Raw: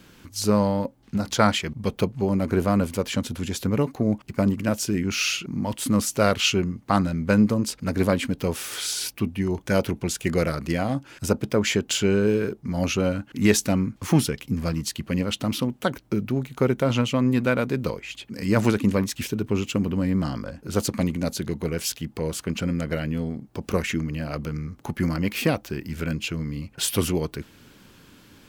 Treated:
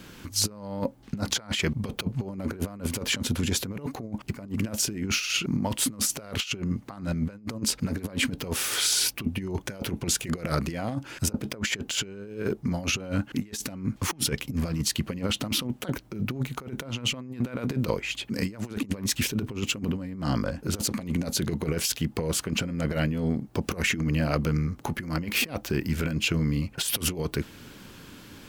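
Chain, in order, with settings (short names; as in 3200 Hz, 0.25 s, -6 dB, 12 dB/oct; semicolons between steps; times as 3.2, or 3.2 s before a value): negative-ratio compressor -28 dBFS, ratio -0.5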